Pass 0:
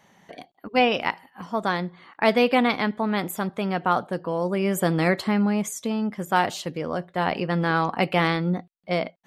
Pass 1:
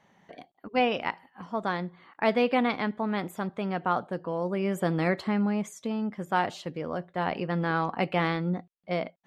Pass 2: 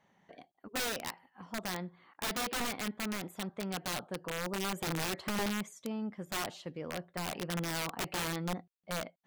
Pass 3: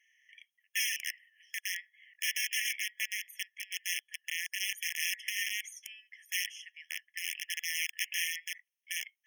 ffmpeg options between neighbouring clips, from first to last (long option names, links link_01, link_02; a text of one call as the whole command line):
ffmpeg -i in.wav -af "aemphasis=mode=reproduction:type=50kf,volume=-4.5dB" out.wav
ffmpeg -i in.wav -af "aeval=exprs='(mod(12.6*val(0)+1,2)-1)/12.6':channel_layout=same,volume=-7dB" out.wav
ffmpeg -i in.wav -af "afftfilt=real='re*eq(mod(floor(b*sr/1024/1700),2),1)':imag='im*eq(mod(floor(b*sr/1024/1700),2),1)':win_size=1024:overlap=0.75,volume=7.5dB" out.wav